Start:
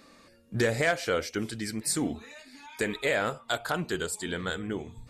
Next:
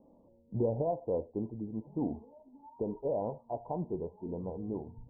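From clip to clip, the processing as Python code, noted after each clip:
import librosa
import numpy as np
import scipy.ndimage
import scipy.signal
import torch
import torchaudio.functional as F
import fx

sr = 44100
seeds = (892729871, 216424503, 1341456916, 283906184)

y = scipy.signal.sosfilt(scipy.signal.cheby1(8, 1.0, 990.0, 'lowpass', fs=sr, output='sos'), x)
y = y * 10.0 ** (-3.0 / 20.0)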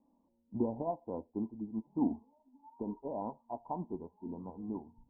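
y = fx.graphic_eq(x, sr, hz=(125, 250, 500, 1000), db=(-9, 9, -10, 10))
y = fx.upward_expand(y, sr, threshold_db=-52.0, expansion=1.5)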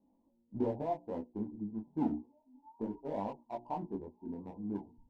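y = fx.wiener(x, sr, points=25)
y = fx.hum_notches(y, sr, base_hz=60, count=6)
y = fx.detune_double(y, sr, cents=11)
y = y * 10.0 ** (5.0 / 20.0)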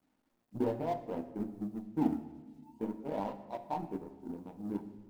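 y = fx.law_mismatch(x, sr, coded='A')
y = fx.room_shoebox(y, sr, seeds[0], volume_m3=930.0, walls='mixed', distance_m=0.53)
y = y * 10.0 ** (3.0 / 20.0)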